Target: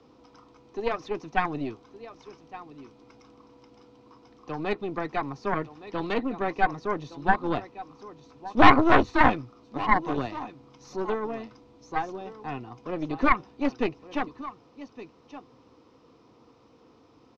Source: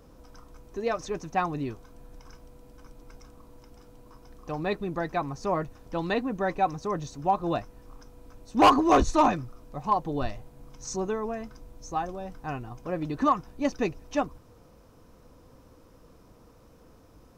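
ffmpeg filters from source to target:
-filter_complex "[0:a]highpass=170,equalizer=f=180:t=q:w=4:g=-9,equalizer=f=590:t=q:w=4:g=-9,equalizer=f=1.6k:t=q:w=4:g=-9,lowpass=f=5k:w=0.5412,lowpass=f=5k:w=1.3066,aecho=1:1:1166:0.178,acrossover=split=260|420|3200[a][b][c][d];[d]alimiter=level_in=10.5dB:limit=-24dB:level=0:latency=1:release=289,volume=-10.5dB[e];[a][b][c][e]amix=inputs=4:normalize=0,aeval=exprs='0.376*(cos(1*acos(clip(val(0)/0.376,-1,1)))-cos(1*PI/2))+0.168*(cos(4*acos(clip(val(0)/0.376,-1,1)))-cos(4*PI/2))':c=same,acrossover=split=3700[f][g];[g]acompressor=threshold=-57dB:ratio=4:attack=1:release=60[h];[f][h]amix=inputs=2:normalize=0,volume=2.5dB"

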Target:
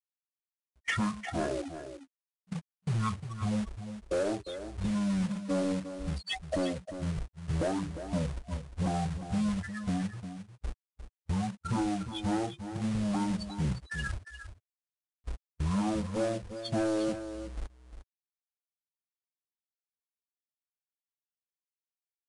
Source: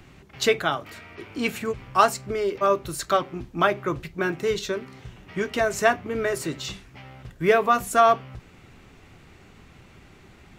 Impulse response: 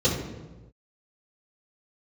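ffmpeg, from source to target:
-filter_complex "[0:a]afftfilt=real='re*gte(hypot(re,im),0.0891)':imag='im*gte(hypot(re,im),0.0891)':win_size=1024:overlap=0.75,agate=range=-32dB:threshold=-42dB:ratio=16:detection=peak,acrusher=bits=2:mode=log:mix=0:aa=0.000001,acompressor=threshold=-32dB:ratio=6,asoftclip=type=tanh:threshold=-31dB,asetrate=20948,aresample=44100,acompressor=mode=upward:threshold=-60dB:ratio=2.5,asplit=2[a][b];[b]aecho=0:1:353:0.299[c];[a][c]amix=inputs=2:normalize=0,volume=6.5dB"

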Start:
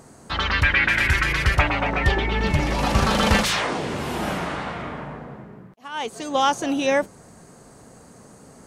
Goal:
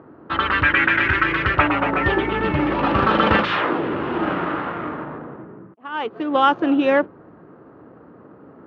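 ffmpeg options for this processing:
-af "adynamicsmooth=sensitivity=6:basefreq=1.6k,highpass=120,equalizer=f=140:t=q:w=4:g=-4,equalizer=f=210:t=q:w=4:g=-5,equalizer=f=320:t=q:w=4:g=8,equalizer=f=720:t=q:w=4:g=-4,equalizer=f=1.3k:t=q:w=4:g=5,equalizer=f=2.2k:t=q:w=4:g=-5,lowpass=f=2.9k:w=0.5412,lowpass=f=2.9k:w=1.3066,volume=3.5dB"

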